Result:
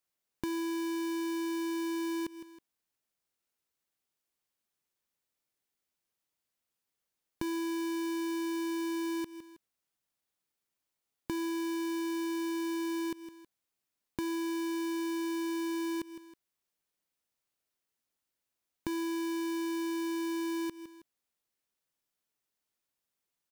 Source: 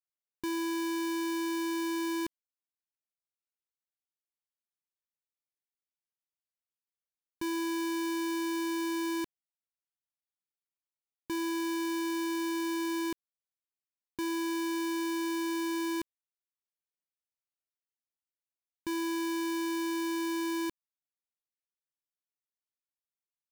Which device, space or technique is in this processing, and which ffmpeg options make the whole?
serial compression, leveller first: -af "equalizer=frequency=280:width_type=o:width=2.2:gain=3,aecho=1:1:160|320:0.0708|0.0262,acompressor=threshold=-36dB:ratio=2.5,acompressor=threshold=-43dB:ratio=6,volume=8.5dB"

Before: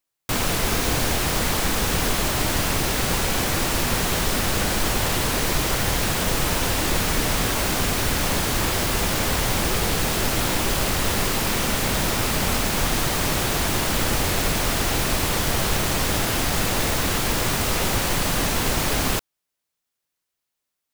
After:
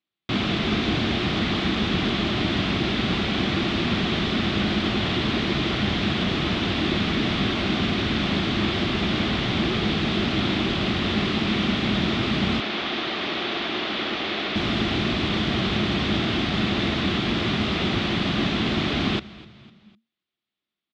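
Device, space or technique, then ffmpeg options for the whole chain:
frequency-shifting delay pedal into a guitar cabinet: -filter_complex "[0:a]asplit=4[link_01][link_02][link_03][link_04];[link_02]adelay=252,afreqshift=-76,volume=-20dB[link_05];[link_03]adelay=504,afreqshift=-152,volume=-26.7dB[link_06];[link_04]adelay=756,afreqshift=-228,volume=-33.5dB[link_07];[link_01][link_05][link_06][link_07]amix=inputs=4:normalize=0,highpass=78,equalizer=frequency=210:width_type=q:width=4:gain=9,equalizer=frequency=340:width_type=q:width=4:gain=6,equalizer=frequency=510:width_type=q:width=4:gain=-9,equalizer=frequency=920:width_type=q:width=4:gain=-8,equalizer=frequency=1600:width_type=q:width=4:gain=-4,equalizer=frequency=3500:width_type=q:width=4:gain=6,lowpass=frequency=3800:width=0.5412,lowpass=frequency=3800:width=1.3066,asettb=1/sr,asplit=3[link_08][link_09][link_10];[link_08]atrim=end=12.604[link_11];[link_09]atrim=start=12.6:end=14.56,asetpts=PTS-STARTPTS,afade=type=in:duration=0.004:curve=qsin,afade=type=out:start_time=1.956:duration=0.004:curve=qsin,acrossover=split=300 6100:gain=0.1 1 0.158[link_12][link_13][link_14];[link_12][link_13][link_14]amix=inputs=3:normalize=0[link_15];[link_10]atrim=start=14.556[link_16];[link_11][link_15]acrossfade=duration=0.004:curve1=hsin:curve2=qsin[link_17];[link_17][link_16]acrossfade=duration=0.004:curve1=qsin:curve2=hsin"

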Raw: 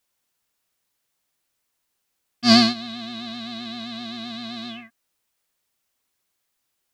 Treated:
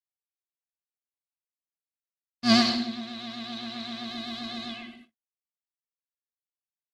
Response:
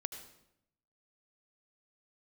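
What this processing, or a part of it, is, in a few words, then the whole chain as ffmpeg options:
speakerphone in a meeting room: -filter_complex "[1:a]atrim=start_sample=2205[link_01];[0:a][link_01]afir=irnorm=-1:irlink=0,dynaudnorm=framelen=100:gausssize=13:maxgain=4.5dB,agate=range=-55dB:threshold=-47dB:ratio=16:detection=peak,volume=-5dB" -ar 48000 -c:a libopus -b:a 16k

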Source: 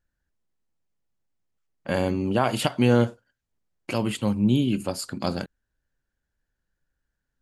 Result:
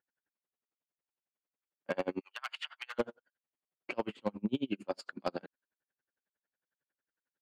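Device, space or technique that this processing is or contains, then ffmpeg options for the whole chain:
helicopter radio: -filter_complex "[0:a]highpass=330,lowpass=2800,aeval=exprs='val(0)*pow(10,-36*(0.5-0.5*cos(2*PI*11*n/s))/20)':channel_layout=same,asoftclip=type=hard:threshold=-21.5dB,asplit=3[link_01][link_02][link_03];[link_01]afade=type=out:start_time=2.19:duration=0.02[link_04];[link_02]highpass=frequency=1300:width=0.5412,highpass=frequency=1300:width=1.3066,afade=type=in:start_time=2.19:duration=0.02,afade=type=out:start_time=2.98:duration=0.02[link_05];[link_03]afade=type=in:start_time=2.98:duration=0.02[link_06];[link_04][link_05][link_06]amix=inputs=3:normalize=0"

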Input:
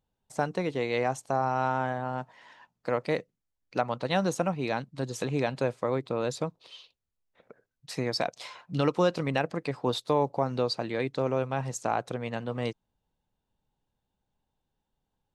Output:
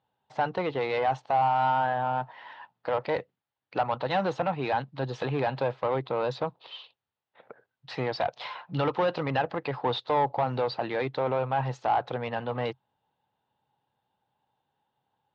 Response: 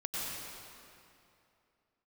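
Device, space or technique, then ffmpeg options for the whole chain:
overdrive pedal into a guitar cabinet: -filter_complex "[0:a]asplit=2[link_01][link_02];[link_02]highpass=frequency=720:poles=1,volume=20dB,asoftclip=type=tanh:threshold=-12dB[link_03];[link_01][link_03]amix=inputs=2:normalize=0,lowpass=frequency=4800:poles=1,volume=-6dB,highpass=80,equalizer=frequency=90:width_type=q:width=4:gain=7,equalizer=frequency=130:width_type=q:width=4:gain=9,equalizer=frequency=840:width_type=q:width=4:gain=6,equalizer=frequency=2300:width_type=q:width=4:gain=-4,lowpass=frequency=3800:width=0.5412,lowpass=frequency=3800:width=1.3066,volume=-6dB"

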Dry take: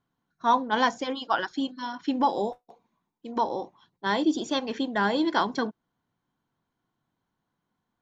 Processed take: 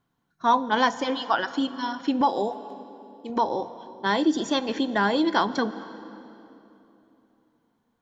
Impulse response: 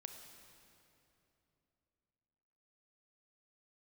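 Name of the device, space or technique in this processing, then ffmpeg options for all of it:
ducked reverb: -filter_complex "[0:a]asplit=3[link_01][link_02][link_03];[1:a]atrim=start_sample=2205[link_04];[link_02][link_04]afir=irnorm=-1:irlink=0[link_05];[link_03]apad=whole_len=353631[link_06];[link_05][link_06]sidechaincompress=threshold=-27dB:ratio=8:attack=16:release=270,volume=1.5dB[link_07];[link_01][link_07]amix=inputs=2:normalize=0,asettb=1/sr,asplit=3[link_08][link_09][link_10];[link_08]atrim=end=2.214[link_11];[link_09]atrim=start=2.21:end=3.3,asetpts=PTS-STARTPTS,afade=type=in:duration=0.004:curve=qsin,afade=type=out:start_time=1.086:duration=0.004:curve=qsin,highpass=frequency=180:poles=1[link_12];[link_10]atrim=start=3.296[link_13];[link_11][link_12]acrossfade=duration=0.004:curve1=hsin:curve2=qsin[link_14];[link_14][link_13]acrossfade=duration=0.004:curve1=qsin:curve2=hsin"

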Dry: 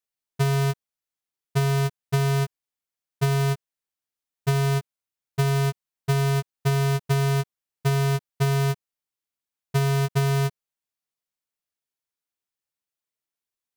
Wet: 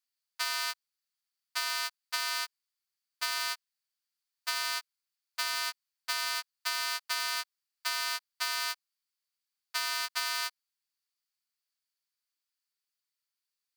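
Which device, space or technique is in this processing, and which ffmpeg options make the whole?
headphones lying on a table: -af "highpass=frequency=1100:width=0.5412,highpass=frequency=1100:width=1.3066,equalizer=frequency=4600:width_type=o:width=0.25:gain=10.5"

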